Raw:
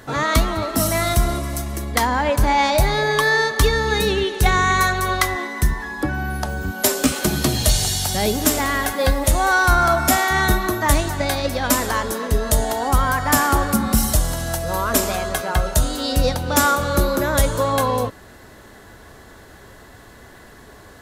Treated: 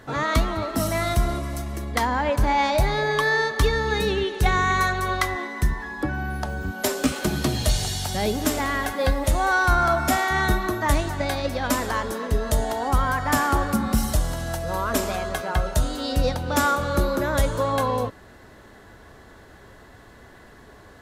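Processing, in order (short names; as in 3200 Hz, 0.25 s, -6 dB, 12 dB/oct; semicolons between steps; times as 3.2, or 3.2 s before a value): high shelf 5800 Hz -8.5 dB; gain -3.5 dB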